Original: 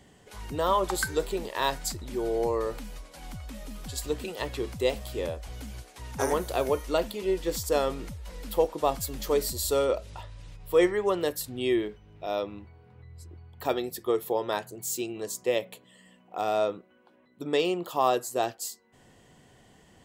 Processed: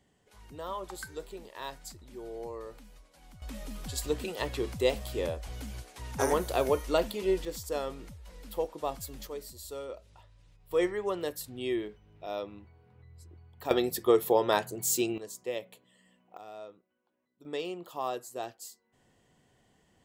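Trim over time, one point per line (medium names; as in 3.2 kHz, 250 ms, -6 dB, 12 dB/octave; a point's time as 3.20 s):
-13 dB
from 3.42 s -0.5 dB
from 7.45 s -8 dB
from 9.27 s -15 dB
from 10.71 s -6 dB
from 13.71 s +3.5 dB
from 15.18 s -8.5 dB
from 16.37 s -19 dB
from 17.45 s -10 dB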